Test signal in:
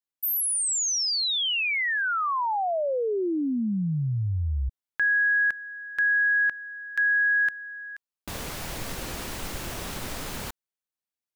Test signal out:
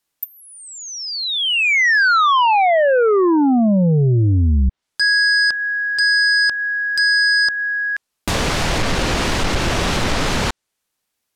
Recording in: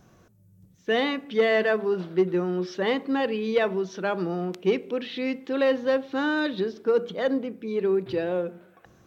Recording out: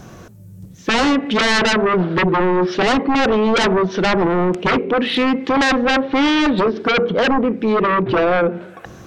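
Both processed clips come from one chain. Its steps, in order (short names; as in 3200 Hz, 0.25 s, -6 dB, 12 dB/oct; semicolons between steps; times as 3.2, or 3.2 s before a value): treble ducked by the level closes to 1800 Hz, closed at -24 dBFS; sine folder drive 14 dB, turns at -12 dBFS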